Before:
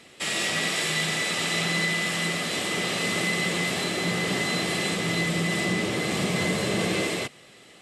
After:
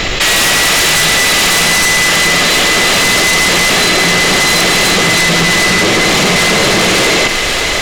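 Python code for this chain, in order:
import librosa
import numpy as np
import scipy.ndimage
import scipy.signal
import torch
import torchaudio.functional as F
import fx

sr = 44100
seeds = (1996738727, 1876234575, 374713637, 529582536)

p1 = scipy.signal.sosfilt(scipy.signal.cheby1(8, 1.0, 7300.0, 'lowpass', fs=sr, output='sos'), x)
p2 = fx.low_shelf(p1, sr, hz=320.0, db=-8.5)
p3 = fx.fold_sine(p2, sr, drive_db=13, ceiling_db=-14.5)
p4 = fx.dmg_noise_colour(p3, sr, seeds[0], colour='brown', level_db=-38.0)
p5 = p4 + fx.echo_thinned(p4, sr, ms=544, feedback_pct=74, hz=420.0, wet_db=-15.5, dry=0)
p6 = fx.env_flatten(p5, sr, amount_pct=70)
y = p6 * librosa.db_to_amplitude(6.5)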